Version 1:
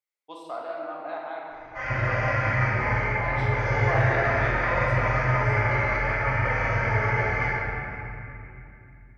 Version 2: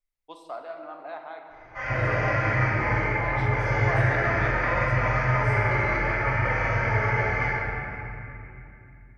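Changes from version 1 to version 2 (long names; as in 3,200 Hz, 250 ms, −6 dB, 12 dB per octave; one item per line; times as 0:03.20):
first voice: send −7.5 dB
second voice: remove resonant band-pass 2,200 Hz, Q 0.79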